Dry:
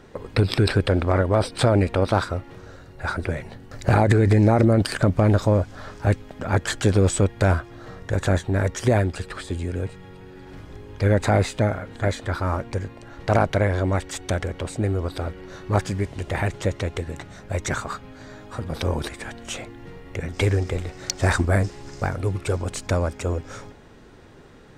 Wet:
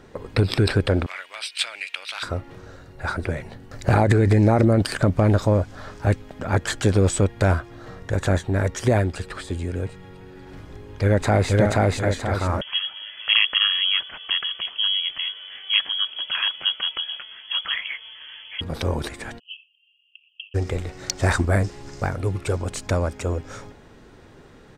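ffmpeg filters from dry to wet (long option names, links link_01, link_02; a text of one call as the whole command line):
ffmpeg -i in.wav -filter_complex "[0:a]asettb=1/sr,asplit=3[link_01][link_02][link_03];[link_01]atrim=end=1.064[link_04];[link_02]atrim=start=1.06:end=2.23,asetpts=PTS-STARTPTS,afade=type=in:duration=0.004:curve=qsin,afade=type=out:start_time=1.166:duration=0.004:curve=qsin,highpass=frequency=2600:width_type=q:width=2.9[link_05];[link_03]atrim=start=2.226[link_06];[link_04][link_05]acrossfade=duration=0.004:curve1=hsin:curve2=qsin[link_07];[link_07][link_06]acrossfade=duration=0.004:curve1=qsin:curve2=hsin,asplit=2[link_08][link_09];[link_09]afade=type=in:start_time=10.7:duration=0.01,afade=type=out:start_time=11.51:duration=0.01,aecho=0:1:480|960|1440|1920|2400|2880:0.944061|0.424827|0.191172|0.0860275|0.0387124|0.0174206[link_10];[link_08][link_10]amix=inputs=2:normalize=0,asettb=1/sr,asplit=3[link_11][link_12][link_13];[link_11]atrim=end=12.614[link_14];[link_12]atrim=start=12.61:end=18.61,asetpts=PTS-STARTPTS,afade=type=in:duration=0.004:curve=qsin,afade=type=out:start_time=5.996:duration=0.004:curve=qsin,lowpass=frequency=2900:width_type=q:width=0.5098,lowpass=frequency=2900:width_type=q:width=0.6013,lowpass=frequency=2900:width_type=q:width=0.9,lowpass=frequency=2900:width_type=q:width=2.563,afreqshift=-3400[link_15];[link_13]atrim=start=18.606[link_16];[link_14][link_15]acrossfade=duration=0.004:curve1=hsin:curve2=qsin[link_17];[link_17][link_16]acrossfade=duration=0.004:curve1=qsin:curve2=hsin,asplit=3[link_18][link_19][link_20];[link_18]afade=type=out:start_time=19.38:duration=0.02[link_21];[link_19]asuperpass=centerf=2900:order=12:qfactor=4.7,afade=type=in:start_time=19.38:duration=0.02,afade=type=out:start_time=20.54:duration=0.02[link_22];[link_20]afade=type=in:start_time=20.54:duration=0.02[link_23];[link_21][link_22][link_23]amix=inputs=3:normalize=0" out.wav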